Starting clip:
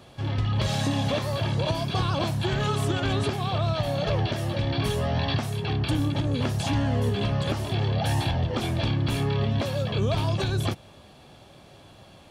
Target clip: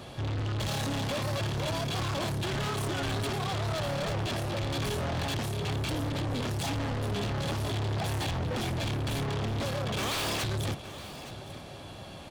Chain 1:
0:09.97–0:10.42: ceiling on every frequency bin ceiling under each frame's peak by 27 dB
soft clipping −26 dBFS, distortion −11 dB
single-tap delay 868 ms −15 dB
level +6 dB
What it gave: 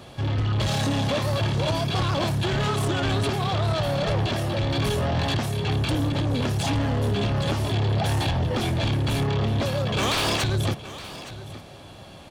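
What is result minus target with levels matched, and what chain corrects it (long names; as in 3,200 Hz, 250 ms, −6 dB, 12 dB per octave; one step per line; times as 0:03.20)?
soft clipping: distortion −6 dB
0:09.97–0:10.42: ceiling on every frequency bin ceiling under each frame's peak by 27 dB
soft clipping −36 dBFS, distortion −5 dB
single-tap delay 868 ms −15 dB
level +6 dB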